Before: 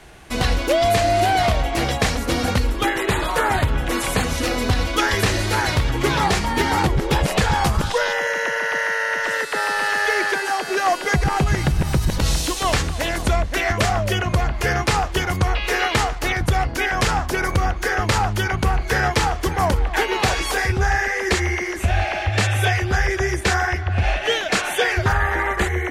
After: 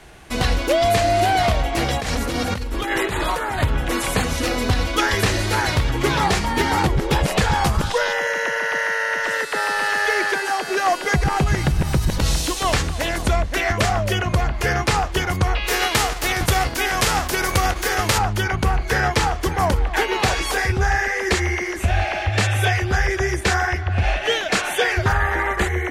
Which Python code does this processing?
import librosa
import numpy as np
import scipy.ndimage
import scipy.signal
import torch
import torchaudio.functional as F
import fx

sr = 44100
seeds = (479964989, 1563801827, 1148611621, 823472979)

y = fx.over_compress(x, sr, threshold_db=-23.0, ratio=-1.0, at=(1.93, 3.63))
y = fx.envelope_flatten(y, sr, power=0.6, at=(15.66, 18.17), fade=0.02)